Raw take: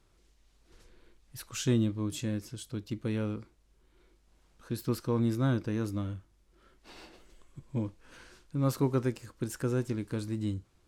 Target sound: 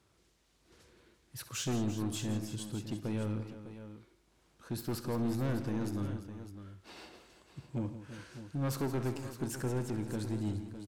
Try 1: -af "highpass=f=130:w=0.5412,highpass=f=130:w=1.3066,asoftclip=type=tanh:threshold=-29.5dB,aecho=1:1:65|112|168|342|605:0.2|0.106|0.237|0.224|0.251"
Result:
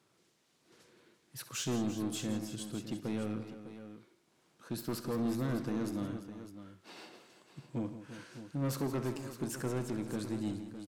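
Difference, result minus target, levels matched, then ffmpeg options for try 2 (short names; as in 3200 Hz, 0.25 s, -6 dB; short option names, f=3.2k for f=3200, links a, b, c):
125 Hz band -3.0 dB
-af "highpass=f=64:w=0.5412,highpass=f=64:w=1.3066,asoftclip=type=tanh:threshold=-29.5dB,aecho=1:1:65|112|168|342|605:0.2|0.106|0.237|0.224|0.251"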